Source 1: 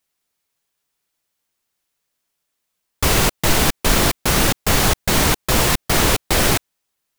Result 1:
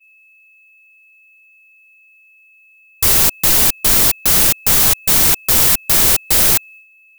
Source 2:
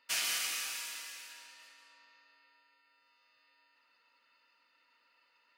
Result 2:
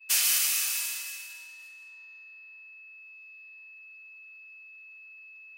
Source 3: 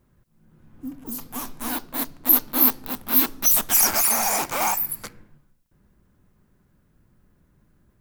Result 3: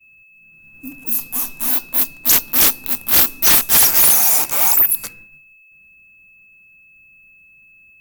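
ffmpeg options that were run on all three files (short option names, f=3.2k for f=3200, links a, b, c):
-af "aeval=exprs='val(0)+0.00794*sin(2*PI*2600*n/s)':c=same,agate=range=-33dB:threshold=-39dB:ratio=3:detection=peak,aemphasis=mode=production:type=75kf,acontrast=66,volume=-7dB"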